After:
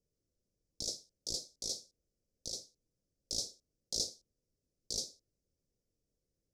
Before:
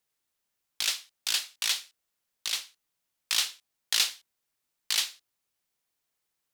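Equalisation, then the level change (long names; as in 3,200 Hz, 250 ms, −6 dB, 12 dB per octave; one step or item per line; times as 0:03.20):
elliptic band-stop filter 530–5,300 Hz, stop band 40 dB
head-to-tape spacing loss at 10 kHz 23 dB
low-shelf EQ 110 Hz +11 dB
+8.0 dB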